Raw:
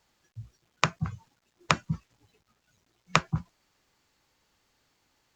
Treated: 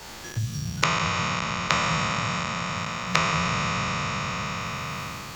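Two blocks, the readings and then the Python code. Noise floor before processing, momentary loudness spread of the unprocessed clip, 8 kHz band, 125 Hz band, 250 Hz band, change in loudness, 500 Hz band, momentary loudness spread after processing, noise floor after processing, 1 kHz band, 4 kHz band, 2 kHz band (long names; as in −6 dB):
−75 dBFS, 21 LU, +9.0 dB, +6.5 dB, +7.5 dB, +4.0 dB, +7.5 dB, 8 LU, −40 dBFS, +8.5 dB, +9.0 dB, +9.0 dB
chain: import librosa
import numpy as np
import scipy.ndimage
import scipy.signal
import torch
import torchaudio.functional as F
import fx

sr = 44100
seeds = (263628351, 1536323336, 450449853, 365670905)

y = fx.spec_trails(x, sr, decay_s=2.41)
y = fx.hum_notches(y, sr, base_hz=60, count=2)
y = fx.band_squash(y, sr, depth_pct=100)
y = y * librosa.db_to_amplitude(-2.5)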